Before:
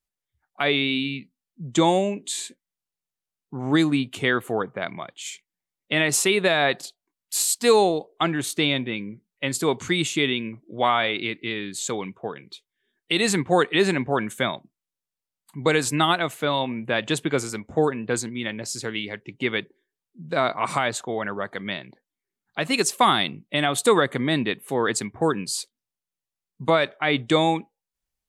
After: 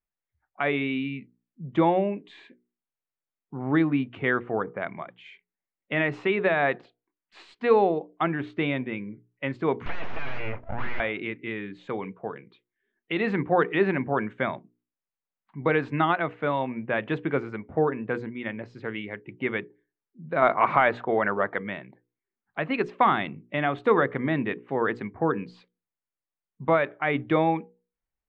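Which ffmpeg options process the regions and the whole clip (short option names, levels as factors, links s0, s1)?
-filter_complex "[0:a]asettb=1/sr,asplit=3[s0][s1][s2];[s0]atrim=end=9.864[s3];[s1]atrim=start=9.86:end=11,asetpts=PTS-STARTPTS,afade=t=in:d=0.004:c=qsin,afade=t=out:st=1.136:d=0.004:c=qsin,asplit=2[s4][s5];[s5]highpass=f=720:p=1,volume=31.6,asoftclip=type=tanh:threshold=0.422[s6];[s4][s6]amix=inputs=2:normalize=0,lowpass=f=5500:p=1,volume=0.501,acompressor=threshold=0.0891:ratio=4:attack=3.2:release=140:knee=1:detection=peak,aeval=exprs='abs(val(0))':c=same[s7];[s2]atrim=start=10.996[s8];[s3][s7]acrossfade=d=0.004:c1=hsin:c2=qsin[s9];[s9][s8]acrossfade=d=0.004:c1=qsin:c2=hsin,asettb=1/sr,asplit=3[s10][s11][s12];[s10]atrim=end=20.424[s13];[s11]atrim=start=20.42:end=21.59,asetpts=PTS-STARTPTS,afade=t=in:d=0.004:c=qsin,afade=t=out:st=1.166:d=0.004:c=qsin,bass=f=250:g=-5,treble=f=4000:g=-2,acontrast=72,acrusher=bits=8:mode=log:mix=0:aa=0.000001[s14];[s12]atrim=start=21.586[s15];[s13][s14]acrossfade=d=0.004:c1=hsin:c2=qsin[s16];[s16][s15]acrossfade=d=0.004:c1=qsin:c2=hsin,lowpass=f=2300:w=0.5412,lowpass=f=2300:w=1.3066,bandreject=f=60:t=h:w=6,bandreject=f=120:t=h:w=6,bandreject=f=180:t=h:w=6,bandreject=f=240:t=h:w=6,bandreject=f=300:t=h:w=6,bandreject=f=360:t=h:w=6,bandreject=f=420:t=h:w=6,bandreject=f=480:t=h:w=6,volume=0.794"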